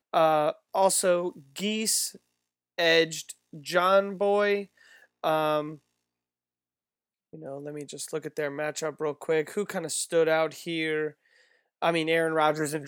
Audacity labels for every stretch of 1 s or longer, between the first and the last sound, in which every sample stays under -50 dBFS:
5.780000	7.330000	silence